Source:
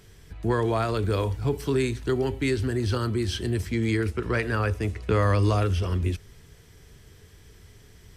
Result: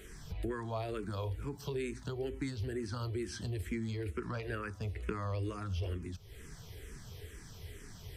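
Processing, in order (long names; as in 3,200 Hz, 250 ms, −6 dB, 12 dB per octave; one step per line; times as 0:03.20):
downward compressor 6 to 1, threshold −38 dBFS, peak gain reduction 18.5 dB
frequency shifter mixed with the dry sound −2.2 Hz
level +5 dB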